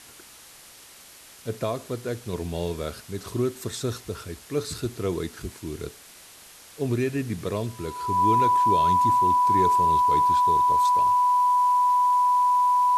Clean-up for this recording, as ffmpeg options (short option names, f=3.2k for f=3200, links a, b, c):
-af "bandreject=f=990:w=30,afwtdn=0.005"